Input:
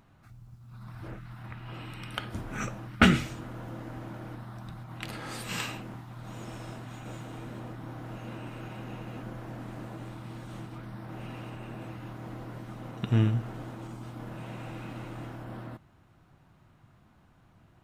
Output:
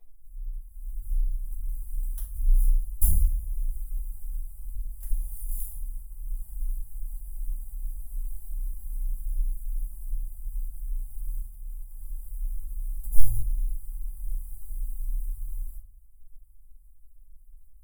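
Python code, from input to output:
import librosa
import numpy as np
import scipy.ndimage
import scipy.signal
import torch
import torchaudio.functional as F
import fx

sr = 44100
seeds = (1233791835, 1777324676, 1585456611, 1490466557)

y = fx.halfwave_hold(x, sr)
y = scipy.signal.sosfilt(scipy.signal.cheby2(4, 40, [120.0, 5800.0], 'bandstop', fs=sr, output='sos'), y)
y = fx.level_steps(y, sr, step_db=9, at=(11.4, 11.98))
y = fx.vibrato(y, sr, rate_hz=1.3, depth_cents=10.0)
y = fx.env_flanger(y, sr, rest_ms=10.2, full_db=-43.0)
y = fx.room_shoebox(y, sr, seeds[0], volume_m3=220.0, walls='furnished', distance_m=4.8)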